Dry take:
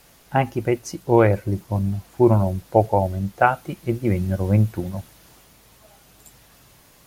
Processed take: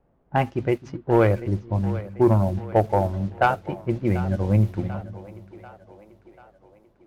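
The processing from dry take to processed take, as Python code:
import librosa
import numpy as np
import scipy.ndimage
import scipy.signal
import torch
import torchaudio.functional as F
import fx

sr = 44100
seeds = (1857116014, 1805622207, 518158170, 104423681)

y = scipy.ndimage.median_filter(x, 5, mode='constant')
y = fx.leveller(y, sr, passes=1)
y = fx.env_lowpass(y, sr, base_hz=680.0, full_db=-12.5)
y = fx.echo_split(y, sr, split_hz=320.0, low_ms=260, high_ms=740, feedback_pct=52, wet_db=-15.5)
y = y * 10.0 ** (-5.0 / 20.0)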